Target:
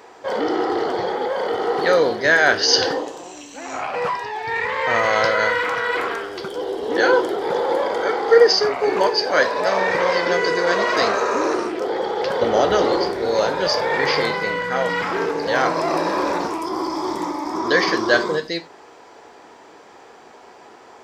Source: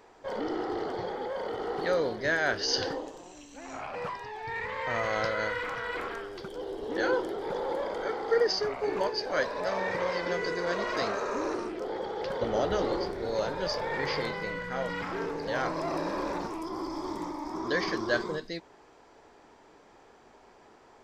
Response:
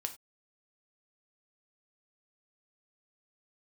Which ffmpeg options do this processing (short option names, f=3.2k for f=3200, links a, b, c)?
-filter_complex "[0:a]highpass=f=280:p=1,asplit=2[a][b];[1:a]atrim=start_sample=2205[c];[b][c]afir=irnorm=-1:irlink=0,volume=5.5dB[d];[a][d]amix=inputs=2:normalize=0,volume=4dB"